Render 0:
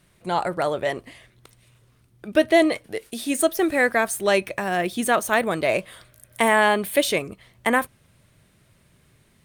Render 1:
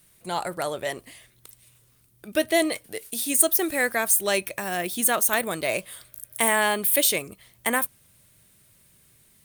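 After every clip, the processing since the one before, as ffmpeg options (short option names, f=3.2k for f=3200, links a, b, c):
-af "aemphasis=mode=production:type=75fm,volume=-5dB"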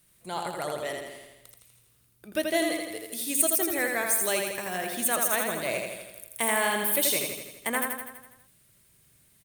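-af "aecho=1:1:82|164|246|328|410|492|574|656:0.631|0.372|0.22|0.13|0.0765|0.0451|0.0266|0.0157,volume=-5.5dB"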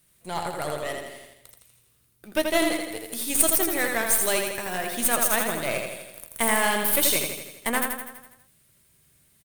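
-filter_complex "[0:a]aeval=exprs='0.473*(cos(1*acos(clip(val(0)/0.473,-1,1)))-cos(1*PI/2))+0.0596*(cos(4*acos(clip(val(0)/0.473,-1,1)))-cos(4*PI/2))+0.075*(cos(6*acos(clip(val(0)/0.473,-1,1)))-cos(6*PI/2))':c=same,asplit=2[a][b];[b]acrusher=bits=5:dc=4:mix=0:aa=0.000001,volume=-7.5dB[c];[a][c]amix=inputs=2:normalize=0,asplit=2[d][e];[e]adelay=13,volume=-13dB[f];[d][f]amix=inputs=2:normalize=0"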